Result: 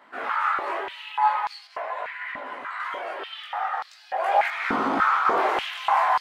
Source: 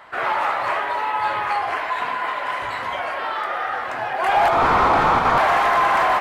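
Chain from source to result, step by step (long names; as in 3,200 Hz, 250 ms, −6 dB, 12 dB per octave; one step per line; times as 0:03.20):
multi-voice chorus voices 2, 0.45 Hz, delay 19 ms, depth 1.8 ms
0:01.67–0:02.80: high-shelf EQ 2,500 Hz −9 dB
high-pass on a step sequencer 3.4 Hz 250–4,500 Hz
level −6 dB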